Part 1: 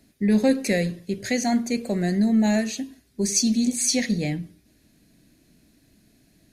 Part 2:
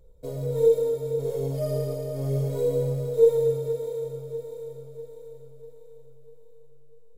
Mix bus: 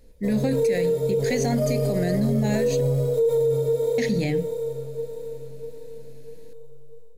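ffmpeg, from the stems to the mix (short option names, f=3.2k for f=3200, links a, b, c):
-filter_complex "[0:a]volume=-4.5dB,asplit=3[a][b][c];[a]atrim=end=2.81,asetpts=PTS-STARTPTS,afade=t=out:st=2.806:d=0.004:c=hsin[d];[b]atrim=start=2.81:end=3.98,asetpts=PTS-STARTPTS,volume=0[e];[c]atrim=start=3.98,asetpts=PTS-STARTPTS,afade=t=in:d=0.004:c=hsin[f];[d][e][f]concat=n=3:v=0:a=1[g];[1:a]volume=2dB[h];[g][h]amix=inputs=2:normalize=0,dynaudnorm=f=280:g=3:m=7dB,alimiter=limit=-15dB:level=0:latency=1:release=42"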